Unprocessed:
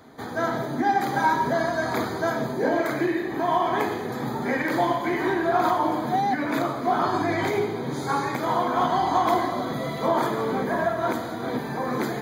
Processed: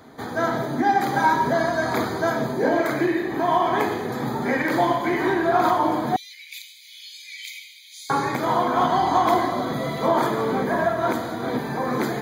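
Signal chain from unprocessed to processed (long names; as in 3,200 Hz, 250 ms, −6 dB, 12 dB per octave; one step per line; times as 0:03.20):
0:06.16–0:08.10: Butterworth high-pass 2,300 Hz 72 dB per octave
level +2.5 dB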